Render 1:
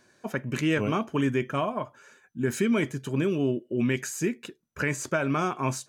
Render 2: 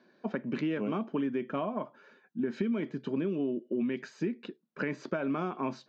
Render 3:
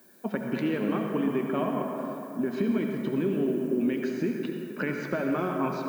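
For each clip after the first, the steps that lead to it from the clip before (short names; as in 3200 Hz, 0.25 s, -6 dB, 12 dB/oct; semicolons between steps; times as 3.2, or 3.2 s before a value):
elliptic band-pass 190–4400 Hz, stop band 40 dB; tilt shelf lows +5 dB, about 670 Hz; compressor, threshold -27 dBFS, peak gain reduction 10 dB; gain -1 dB
added noise violet -62 dBFS; on a send at -2 dB: reverb RT60 3.2 s, pre-delay 63 ms; on the sum: gain +2.5 dB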